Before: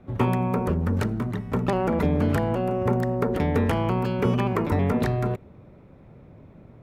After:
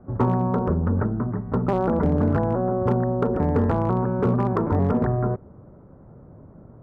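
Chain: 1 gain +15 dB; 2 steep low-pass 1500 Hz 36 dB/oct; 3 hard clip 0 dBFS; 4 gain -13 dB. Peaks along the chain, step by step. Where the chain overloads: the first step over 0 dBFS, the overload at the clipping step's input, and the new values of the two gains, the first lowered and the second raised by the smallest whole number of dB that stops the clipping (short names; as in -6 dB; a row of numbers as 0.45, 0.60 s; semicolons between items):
+5.5, +5.5, 0.0, -13.0 dBFS; step 1, 5.5 dB; step 1 +9 dB, step 4 -7 dB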